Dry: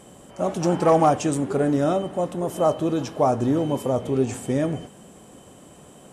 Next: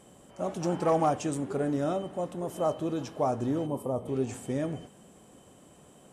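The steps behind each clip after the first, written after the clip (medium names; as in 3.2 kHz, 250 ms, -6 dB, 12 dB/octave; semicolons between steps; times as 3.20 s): time-frequency box 3.66–4.08 s, 1.3–7.8 kHz -10 dB; trim -8 dB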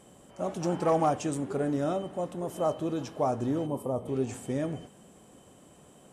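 no audible change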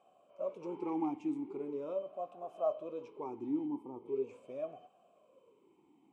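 talking filter a-u 0.41 Hz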